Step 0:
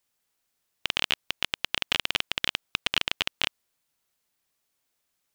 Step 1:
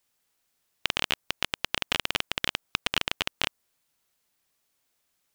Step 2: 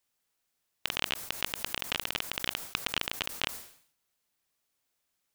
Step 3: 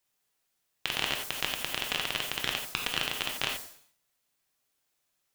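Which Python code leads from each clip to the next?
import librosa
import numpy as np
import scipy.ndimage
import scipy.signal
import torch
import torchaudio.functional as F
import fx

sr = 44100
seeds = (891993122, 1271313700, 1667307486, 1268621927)

y1 = fx.dynamic_eq(x, sr, hz=3200.0, q=0.82, threshold_db=-38.0, ratio=4.0, max_db=-5)
y1 = F.gain(torch.from_numpy(y1), 2.5).numpy()
y2 = fx.sustainer(y1, sr, db_per_s=100.0)
y2 = F.gain(torch.from_numpy(y2), -5.0).numpy()
y3 = fx.rev_gated(y2, sr, seeds[0], gate_ms=110, shape='flat', drr_db=1.5)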